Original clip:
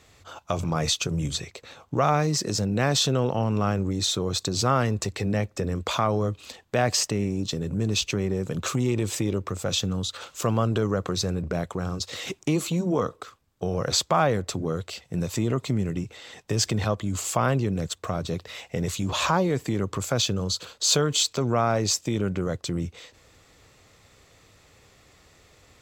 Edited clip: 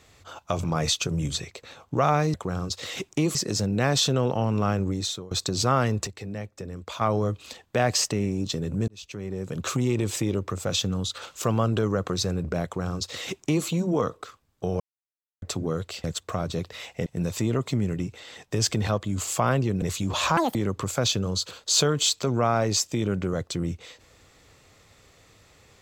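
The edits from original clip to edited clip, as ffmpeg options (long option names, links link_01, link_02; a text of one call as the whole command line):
ffmpeg -i in.wav -filter_complex "[0:a]asplit=14[link_01][link_02][link_03][link_04][link_05][link_06][link_07][link_08][link_09][link_10][link_11][link_12][link_13][link_14];[link_01]atrim=end=2.342[link_15];[link_02]atrim=start=11.638:end=12.652[link_16];[link_03]atrim=start=2.338:end=4.3,asetpts=PTS-STARTPTS,afade=type=out:start_time=1.552:duration=0.41:silence=0.0794328[link_17];[link_04]atrim=start=4.3:end=5.062,asetpts=PTS-STARTPTS,afade=type=in:duration=0.004:curve=hsin:silence=0.0794328[link_18];[link_05]atrim=start=5.058:end=6.002,asetpts=PTS-STARTPTS,volume=-9dB[link_19];[link_06]atrim=start=5.998:end=7.87,asetpts=PTS-STARTPTS,afade=type=out:start_time=1.868:duration=0.004:curve=hsin[link_20];[link_07]atrim=start=7.87:end=13.79,asetpts=PTS-STARTPTS,afade=type=in:duration=0.88,afade=type=out:start_time=5.916:duration=0.004:curve=hsin[link_21];[link_08]atrim=start=13.79:end=14.41,asetpts=PTS-STARTPTS,volume=0[link_22];[link_09]atrim=start=14.41:end=15.032,asetpts=PTS-STARTPTS,afade=type=in:duration=0.004:curve=hsin[link_23];[link_10]atrim=start=17.788:end=18.812[link_24];[link_11]atrim=start=15.028:end=17.792[link_25];[link_12]atrim=start=18.808:end=19.364[link_26];[link_13]atrim=start=19.36:end=19.69,asetpts=PTS-STARTPTS,asetrate=79821,aresample=44100,atrim=end_sample=8040,asetpts=PTS-STARTPTS[link_27];[link_14]atrim=start=19.686[link_28];[link_15][link_16]acrossfade=duration=0.004:curve1=hsin:curve2=hsin[link_29];[link_17][link_18]concat=n=2:v=0:a=1[link_30];[link_29][link_30]acrossfade=duration=0.004:curve1=hsin:curve2=hsin[link_31];[link_31][link_19]acrossfade=duration=0.004:curve1=hsin:curve2=hsin[link_32];[link_20][link_21][link_22][link_23]concat=n=4:v=0:a=1[link_33];[link_32][link_33]acrossfade=duration=0.004:curve1=hsin:curve2=hsin[link_34];[link_34][link_24]acrossfade=duration=0.004:curve1=hsin:curve2=hsin[link_35];[link_35][link_25]acrossfade=duration=0.004:curve1=hsin:curve2=hsin[link_36];[link_36][link_26]acrossfade=duration=0.004:curve1=hsin:curve2=hsin[link_37];[link_37][link_27]acrossfade=duration=0.004:curve1=hsin:curve2=hsin[link_38];[link_38][link_28]acrossfade=duration=0.004:curve1=hsin:curve2=hsin" out.wav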